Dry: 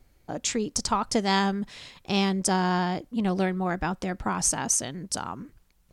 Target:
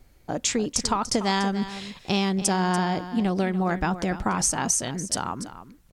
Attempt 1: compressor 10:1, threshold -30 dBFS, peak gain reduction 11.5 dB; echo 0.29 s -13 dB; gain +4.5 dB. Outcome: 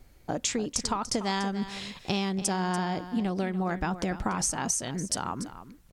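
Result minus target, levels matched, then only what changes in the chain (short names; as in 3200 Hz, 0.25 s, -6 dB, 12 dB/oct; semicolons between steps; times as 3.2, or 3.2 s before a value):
compressor: peak gain reduction +5.5 dB
change: compressor 10:1, threshold -24 dBFS, peak gain reduction 6 dB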